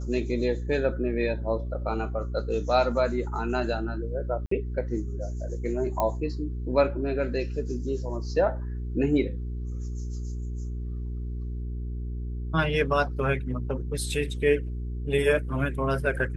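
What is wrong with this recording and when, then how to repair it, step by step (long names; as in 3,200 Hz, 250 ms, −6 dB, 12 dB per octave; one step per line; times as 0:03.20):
mains hum 60 Hz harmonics 7 −32 dBFS
0:04.46–0:04.51: drop-out 54 ms
0:06.00: click −13 dBFS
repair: click removal
hum removal 60 Hz, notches 7
repair the gap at 0:04.46, 54 ms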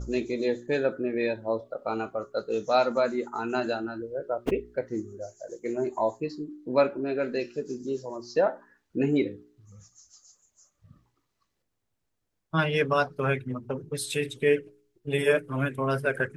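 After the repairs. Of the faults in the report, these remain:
none of them is left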